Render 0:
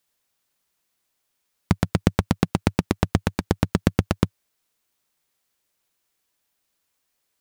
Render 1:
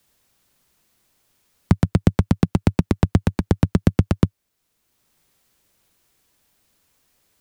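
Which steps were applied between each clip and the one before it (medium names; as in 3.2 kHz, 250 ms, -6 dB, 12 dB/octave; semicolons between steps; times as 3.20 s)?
bass shelf 330 Hz +9.5 dB; three bands compressed up and down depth 40%; trim -3 dB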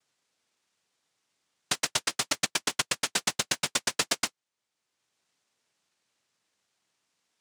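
noise-vocoded speech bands 1; in parallel at -4 dB: bit crusher 5-bit; on the sum: peak limiter -4 dBFS, peak gain reduction 11.5 dB; trim -8.5 dB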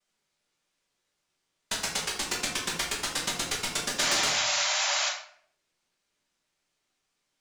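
cycle switcher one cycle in 3, inverted; painted sound noise, 3.98–5.09 s, 560–7400 Hz -26 dBFS; simulated room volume 95 m³, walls mixed, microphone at 1.2 m; trim -5.5 dB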